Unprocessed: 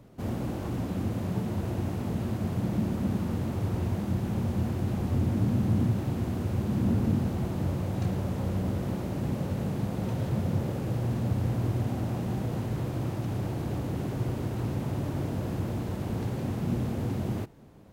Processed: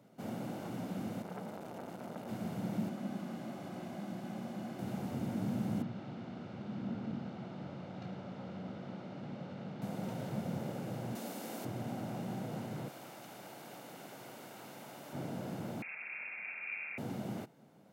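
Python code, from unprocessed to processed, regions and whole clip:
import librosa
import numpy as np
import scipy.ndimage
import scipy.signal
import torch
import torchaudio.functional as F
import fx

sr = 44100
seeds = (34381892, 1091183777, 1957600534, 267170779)

y = fx.chain(x, sr, fx.peak_eq(hz=96.0, db=-4.5, octaves=1.5),
    fx.transformer_sat(knee_hz=910.0), at=(1.22, 2.29))
y = fx.chain(y, sr, fx.bessel_highpass(hz=220.0, order=2),
    fx.high_shelf(hz=8500.0, db=-6.5),
    fx.notch_comb(f0_hz=460.0), at=(2.89, 4.79))
y = fx.chain(y, sr, fx.ladder_lowpass(hz=5500.0, resonance_pct=20),
    fx.peak_eq(hz=1300.0, db=4.0, octaves=0.23), at=(5.82, 9.82))
y = fx.chain(y, sr, fx.highpass(hz=240.0, slope=24),
    fx.high_shelf(hz=4100.0, db=12.0), at=(11.15, 11.65))
y = fx.chain(y, sr, fx.highpass(hz=1000.0, slope=6),
    fx.high_shelf(hz=11000.0, db=5.5), at=(12.88, 15.13))
y = fx.chain(y, sr, fx.low_shelf(hz=420.0, db=-8.5),
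    fx.freq_invert(carrier_hz=2600), at=(15.82, 16.98))
y = scipy.signal.sosfilt(scipy.signal.butter(4, 160.0, 'highpass', fs=sr, output='sos'), y)
y = y + 0.33 * np.pad(y, (int(1.4 * sr / 1000.0), 0))[:len(y)]
y = y * 10.0 ** (-6.0 / 20.0)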